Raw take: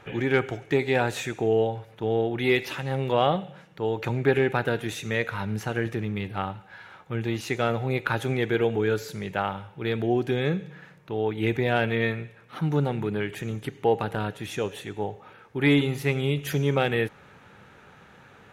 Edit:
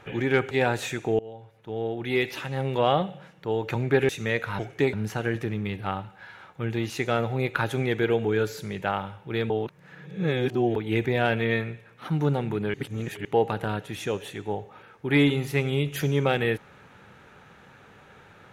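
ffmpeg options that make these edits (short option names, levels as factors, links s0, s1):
-filter_complex "[0:a]asplit=10[s0][s1][s2][s3][s4][s5][s6][s7][s8][s9];[s0]atrim=end=0.512[s10];[s1]atrim=start=0.848:end=1.53,asetpts=PTS-STARTPTS,afade=t=out:st=0.678:d=0.004:c=hsin:silence=0.0668344[s11];[s2]atrim=start=1.53:end=4.432,asetpts=PTS-STARTPTS,afade=t=in:d=1.88:c=qsin:silence=0.0668344[s12];[s3]atrim=start=4.938:end=5.442[s13];[s4]atrim=start=0.508:end=0.852[s14];[s5]atrim=start=5.438:end=10.012[s15];[s6]atrim=start=10.008:end=11.272,asetpts=PTS-STARTPTS,areverse[s16];[s7]atrim=start=11.268:end=13.252[s17];[s8]atrim=start=13.248:end=13.762,asetpts=PTS-STARTPTS,areverse[s18];[s9]atrim=start=13.758[s19];[s11][s12]concat=n=2:v=0:a=1[s20];[s10][s20]acrossfade=d=0.004:c1=hsin:c2=hsin[s21];[s21][s13]acrossfade=d=0.004:c1=hsin:c2=hsin[s22];[s22][s14]acrossfade=d=0.004:c1=hsin:c2=hsin[s23];[s23][s15]acrossfade=d=0.004:c1=hsin:c2=hsin[s24];[s24][s16]acrossfade=d=0.004:c1=hsin:c2=hsin[s25];[s25][s17]acrossfade=d=0.004:c1=hsin:c2=hsin[s26];[s26][s18]acrossfade=d=0.004:c1=hsin:c2=hsin[s27];[s27][s19]acrossfade=d=0.004:c1=hsin:c2=hsin"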